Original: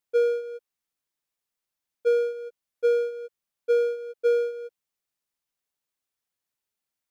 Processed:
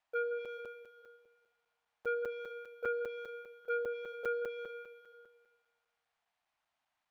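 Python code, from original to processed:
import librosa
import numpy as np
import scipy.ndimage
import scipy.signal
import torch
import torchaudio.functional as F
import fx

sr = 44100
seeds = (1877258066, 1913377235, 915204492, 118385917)

p1 = np.repeat(x[::3], 3)[:len(x)]
p2 = fx.bass_treble(p1, sr, bass_db=1, treble_db=-13)
p3 = p2 + fx.echo_heads(p2, sr, ms=83, heads='first and second', feedback_pct=60, wet_db=-15, dry=0)
p4 = fx.env_lowpass_down(p3, sr, base_hz=1600.0, full_db=-18.5)
p5 = fx.echo_feedback(p4, sr, ms=443, feedback_pct=22, wet_db=-17.5)
p6 = 10.0 ** (-24.0 / 20.0) * np.tanh(p5 / 10.0 ** (-24.0 / 20.0))
p7 = fx.low_shelf_res(p6, sr, hz=560.0, db=-8.0, q=3.0)
p8 = fx.buffer_crackle(p7, sr, first_s=0.45, period_s=0.2, block=256, kind='zero')
y = F.gain(torch.from_numpy(p8), 3.0).numpy()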